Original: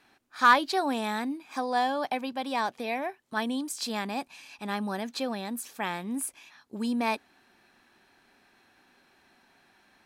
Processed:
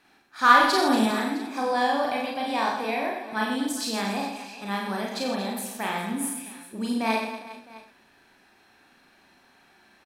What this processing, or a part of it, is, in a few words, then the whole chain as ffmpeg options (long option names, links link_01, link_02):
slapback doubling: -filter_complex "[0:a]asplit=3[link_01][link_02][link_03];[link_02]adelay=36,volume=-3.5dB[link_04];[link_03]adelay=97,volume=-9dB[link_05];[link_01][link_04][link_05]amix=inputs=3:normalize=0,asettb=1/sr,asplit=3[link_06][link_07][link_08];[link_06]atrim=end=0.634[link_09];[link_07]atrim=start=0.63:end=1.06,asetpts=PTS-STARTPTS,afade=type=in:duration=0.004:curve=qsin,afade=type=out:start_time=0.426:duration=0.004:curve=qsin,bass=frequency=250:gain=11,treble=frequency=4000:gain=6[link_10];[link_08]atrim=start=1.056[link_11];[link_09][link_10]acrossfade=duration=0.004:curve1=hsin:curve2=qsin[link_12];[link_12][link_11]acrossfade=duration=0.004:curve1=qsin:curve2=hsin,aecho=1:1:50|125|237.5|406.2|659.4:0.631|0.398|0.251|0.158|0.1"